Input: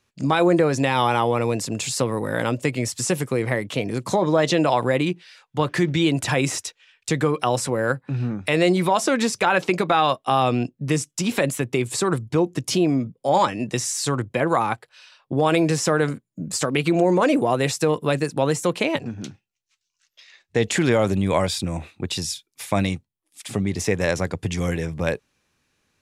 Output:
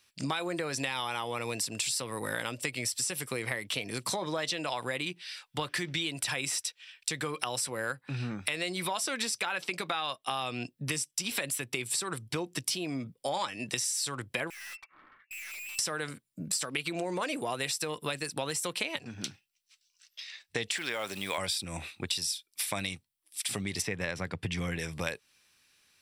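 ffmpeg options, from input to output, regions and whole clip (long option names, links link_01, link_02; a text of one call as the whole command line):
ffmpeg -i in.wav -filter_complex "[0:a]asettb=1/sr,asplit=3[link_01][link_02][link_03];[link_01]atrim=end=14.504[link_04];[link_02]atrim=start=14.5:end=15.79,asetpts=PTS-STARTPTS,afade=type=in:duration=0.004:curve=qsin,afade=type=out:start_time=1.286:duration=0.004:curve=qsin,lowpass=frequency=2400:width_type=q:width=0.5098,lowpass=frequency=2400:width_type=q:width=0.6013,lowpass=frequency=2400:width_type=q:width=0.9,lowpass=frequency=2400:width_type=q:width=2.563,afreqshift=-2800,acompressor=threshold=-28dB:ratio=3:attack=3.2:release=140:knee=1:detection=peak,aeval=exprs='(tanh(200*val(0)+0.4)-tanh(0.4))/200':channel_layout=same[link_05];[link_03]atrim=start=15.786[link_06];[link_04][link_05]acrossfade=duration=0.004:curve1=hsin:curve2=qsin[link_07];[link_07][link_06]acrossfade=duration=0.004:curve1=qsin:curve2=hsin,asettb=1/sr,asplit=3[link_08][link_09][link_10];[link_08]atrim=end=20.724[link_11];[link_09]atrim=start=20.72:end=21.38,asetpts=PTS-STARTPTS,afade=type=in:duration=0.004:curve=qsin,afade=type=out:start_time=0.656:duration=0.004:curve=qsin,highpass=frequency=610:poles=1,highshelf=frequency=8000:gain=-9.5,acrusher=bits=7:mix=0:aa=0.5[link_12];[link_10]atrim=start=21.376[link_13];[link_11][link_12]acrossfade=duration=0.004:curve1=hsin:curve2=qsin[link_14];[link_14][link_13]acrossfade=duration=0.004:curve1=qsin:curve2=hsin,asettb=1/sr,asplit=3[link_15][link_16][link_17];[link_15]atrim=end=23.824[link_18];[link_16]atrim=start=23.82:end=24.79,asetpts=PTS-STARTPTS,afade=type=in:duration=0.004:curve=qsin,afade=type=out:start_time=0.966:duration=0.004:curve=qsin,highpass=frequency=130:poles=1,bass=frequency=250:gain=9,treble=frequency=4000:gain=-13[link_19];[link_17]atrim=start=24.786[link_20];[link_18][link_19]acrossfade=duration=0.004:curve1=hsin:curve2=qsin[link_21];[link_21][link_20]acrossfade=duration=0.004:curve1=qsin:curve2=hsin,tiltshelf=frequency=1400:gain=-9,bandreject=frequency=6700:width=5.3,acompressor=threshold=-30dB:ratio=6" out.wav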